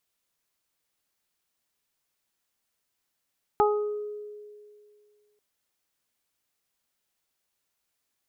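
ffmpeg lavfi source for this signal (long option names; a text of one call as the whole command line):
ffmpeg -f lavfi -i "aevalsrc='0.1*pow(10,-3*t/2.22)*sin(2*PI*418*t)+0.141*pow(10,-3*t/0.39)*sin(2*PI*836*t)+0.0562*pow(10,-3*t/0.72)*sin(2*PI*1254*t)':duration=1.79:sample_rate=44100" out.wav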